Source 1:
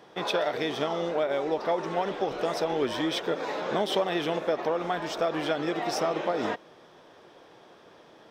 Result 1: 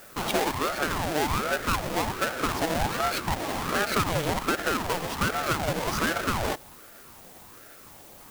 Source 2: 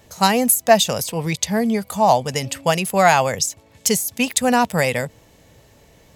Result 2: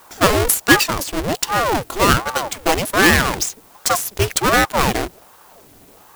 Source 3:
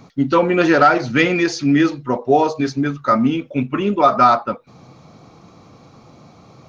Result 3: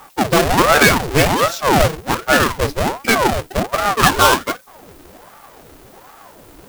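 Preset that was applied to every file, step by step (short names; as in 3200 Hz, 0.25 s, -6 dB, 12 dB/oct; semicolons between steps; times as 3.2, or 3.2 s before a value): half-waves squared off; added noise blue -48 dBFS; ring modulator with a swept carrier 590 Hz, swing 75%, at 1.3 Hz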